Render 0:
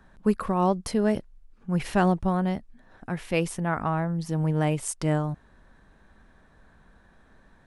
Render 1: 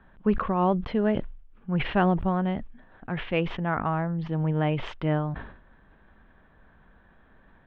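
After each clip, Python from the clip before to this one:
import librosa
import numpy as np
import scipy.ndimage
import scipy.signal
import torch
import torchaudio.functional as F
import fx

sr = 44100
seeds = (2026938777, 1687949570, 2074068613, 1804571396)

y = scipy.signal.sosfilt(scipy.signal.ellip(4, 1.0, 70, 3300.0, 'lowpass', fs=sr, output='sos'), x)
y = fx.sustainer(y, sr, db_per_s=82.0)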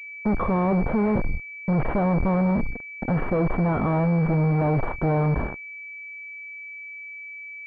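y = fx.fuzz(x, sr, gain_db=46.0, gate_db=-43.0)
y = fx.pwm(y, sr, carrier_hz=2300.0)
y = y * 10.0 ** (-6.0 / 20.0)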